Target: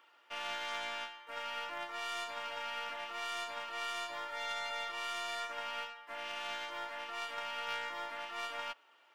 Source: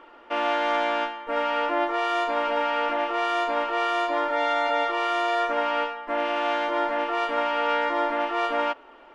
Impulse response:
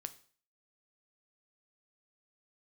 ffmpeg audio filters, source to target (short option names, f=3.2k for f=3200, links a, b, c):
-af "aderivative,aeval=exprs='0.0631*(cos(1*acos(clip(val(0)/0.0631,-1,1)))-cos(1*PI/2))+0.00447*(cos(3*acos(clip(val(0)/0.0631,-1,1)))-cos(3*PI/2))+0.00251*(cos(6*acos(clip(val(0)/0.0631,-1,1)))-cos(6*PI/2))':c=same,volume=2dB"